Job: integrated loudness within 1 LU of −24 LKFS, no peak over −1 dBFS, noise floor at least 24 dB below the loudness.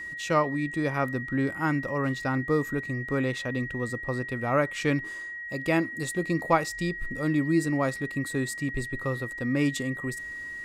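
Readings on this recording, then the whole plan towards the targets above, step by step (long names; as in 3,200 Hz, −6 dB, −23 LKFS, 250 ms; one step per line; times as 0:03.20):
interfering tone 1,900 Hz; level of the tone −35 dBFS; integrated loudness −28.5 LKFS; sample peak −9.0 dBFS; target loudness −24.0 LKFS
→ notch filter 1,900 Hz, Q 30
level +4.5 dB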